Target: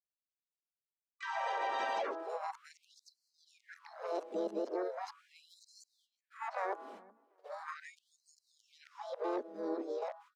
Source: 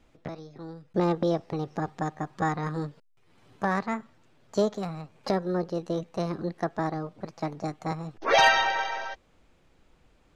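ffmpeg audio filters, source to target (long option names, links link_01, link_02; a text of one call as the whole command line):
ffmpeg -i in.wav -filter_complex "[0:a]areverse,agate=range=-48dB:threshold=-53dB:ratio=16:detection=peak,equalizer=frequency=450:width_type=o:width=2.4:gain=13,bandreject=frequency=164:width_type=h:width=4,bandreject=frequency=328:width_type=h:width=4,bandreject=frequency=492:width_type=h:width=4,bandreject=frequency=656:width_type=h:width=4,bandreject=frequency=820:width_type=h:width=4,bandreject=frequency=984:width_type=h:width=4,bandreject=frequency=1148:width_type=h:width=4,bandreject=frequency=1312:width_type=h:width=4,bandreject=frequency=1476:width_type=h:width=4,acrossover=split=170|820[link_01][link_02][link_03];[link_01]acompressor=threshold=-37dB:ratio=4[link_04];[link_02]acompressor=threshold=-25dB:ratio=4[link_05];[link_03]acompressor=threshold=-27dB:ratio=4[link_06];[link_04][link_05][link_06]amix=inputs=3:normalize=0,alimiter=limit=-22dB:level=0:latency=1:release=140,acompressor=threshold=-38dB:ratio=2,asplit=2[link_07][link_08];[link_08]adelay=371,lowpass=frequency=1800:poles=1,volume=-23dB,asplit=2[link_09][link_10];[link_10]adelay=371,lowpass=frequency=1800:poles=1,volume=0.22[link_11];[link_09][link_11]amix=inputs=2:normalize=0[link_12];[link_07][link_12]amix=inputs=2:normalize=0,asplit=2[link_13][link_14];[link_14]asetrate=55563,aresample=44100,atempo=0.793701,volume=-7dB[link_15];[link_13][link_15]amix=inputs=2:normalize=0,afftfilt=real='re*gte(b*sr/1024,200*pow(4100/200,0.5+0.5*sin(2*PI*0.39*pts/sr)))':imag='im*gte(b*sr/1024,200*pow(4100/200,0.5+0.5*sin(2*PI*0.39*pts/sr)))':win_size=1024:overlap=0.75" out.wav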